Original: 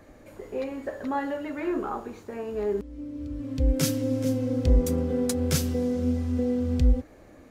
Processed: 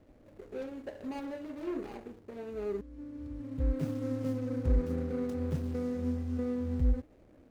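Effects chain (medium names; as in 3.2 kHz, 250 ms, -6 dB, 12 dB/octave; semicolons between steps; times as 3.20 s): median filter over 41 samples; trim -7 dB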